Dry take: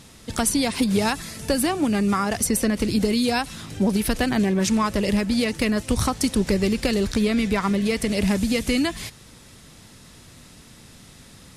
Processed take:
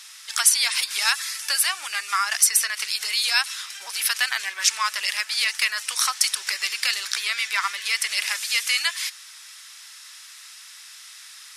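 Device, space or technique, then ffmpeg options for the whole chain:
headphones lying on a table: -af "highpass=f=1.3k:w=0.5412,highpass=f=1.3k:w=1.3066,equalizer=f=5.4k:t=o:w=0.26:g=4.5,volume=6.5dB"

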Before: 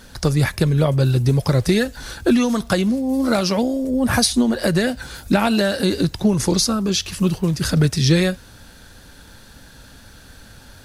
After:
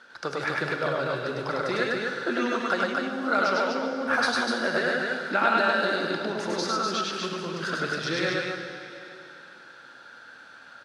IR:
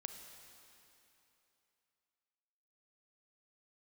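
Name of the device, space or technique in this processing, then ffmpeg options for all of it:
station announcement: -filter_complex "[0:a]highpass=400,lowpass=3.9k,equalizer=f=1.4k:t=o:w=0.44:g=11.5,aecho=1:1:102|247.8:0.891|0.708[a];[1:a]atrim=start_sample=2205[b];[a][b]afir=irnorm=-1:irlink=0,volume=-4.5dB"

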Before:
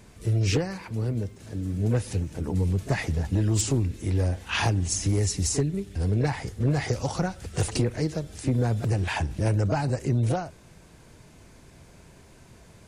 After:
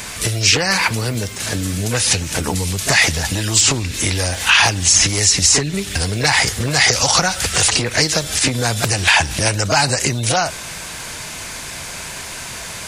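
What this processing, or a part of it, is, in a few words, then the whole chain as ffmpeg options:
mastering chain: -filter_complex "[0:a]equalizer=f=380:t=o:w=0.79:g=-3.5,acrossover=split=3200|7200[a][b][c];[a]acompressor=threshold=-30dB:ratio=4[d];[b]acompressor=threshold=-40dB:ratio=4[e];[c]acompressor=threshold=-54dB:ratio=4[f];[d][e][f]amix=inputs=3:normalize=0,acompressor=threshold=-33dB:ratio=2,tiltshelf=f=660:g=-9.5,alimiter=level_in=22dB:limit=-1dB:release=50:level=0:latency=1,volume=-1dB"

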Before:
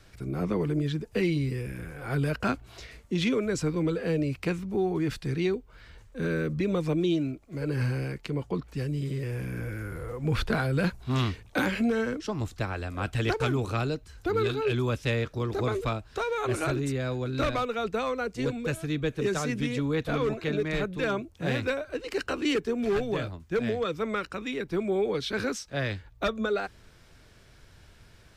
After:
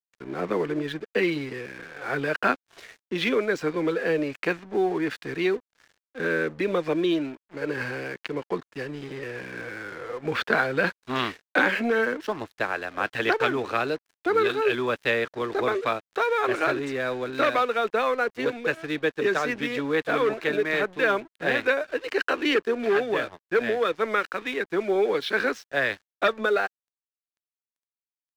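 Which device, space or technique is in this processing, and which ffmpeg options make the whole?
pocket radio on a weak battery: -af "highpass=370,lowpass=3.6k,aeval=exprs='sgn(val(0))*max(abs(val(0))-0.00282,0)':c=same,equalizer=f=1.7k:t=o:w=0.33:g=5.5,volume=7dB"

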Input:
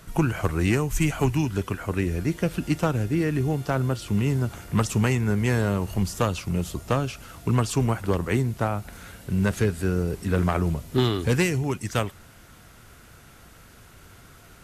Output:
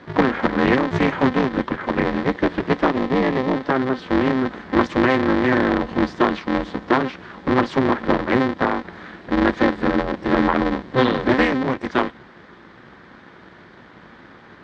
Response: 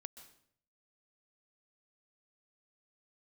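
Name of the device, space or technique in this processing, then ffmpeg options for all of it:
ring modulator pedal into a guitar cabinet: -filter_complex "[0:a]aeval=exprs='val(0)*sgn(sin(2*PI*130*n/s))':c=same,highpass=80,equalizer=f=81:t=q:w=4:g=-8,equalizer=f=350:t=q:w=4:g=5,equalizer=f=1k:t=q:w=4:g=4,equalizer=f=1.8k:t=q:w=4:g=6,equalizer=f=2.7k:t=q:w=4:g=-7,lowpass=f=3.8k:w=0.5412,lowpass=f=3.8k:w=1.3066,asettb=1/sr,asplit=3[a][b][c];[a]atrim=end=2.874[d];[b]atrim=start=2.87:end=3.53,asetpts=PTS-STARTPTS,afade=t=in:d=0.004:c=qsin,afade=t=out:st=0.656:d=0.004:c=qsin,equalizer=f=1.5k:t=o:w=0.21:g=-10[e];[c]atrim=start=3.526[f];[d][e]acrossfade=d=0.004:c1=hsin:c2=qsin[g];[g][f]acrossfade=d=0.004:c1=qsin:c2=hsin,volume=4.5dB"

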